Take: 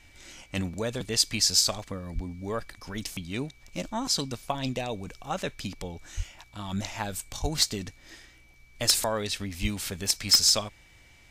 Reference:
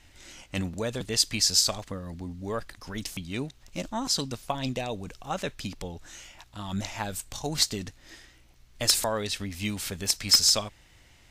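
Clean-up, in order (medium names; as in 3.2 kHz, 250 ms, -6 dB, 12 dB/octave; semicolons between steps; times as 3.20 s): clip repair -11.5 dBFS; band-stop 2.3 kHz, Q 30; de-plosive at 2.14/6.16/7.41/9.61 s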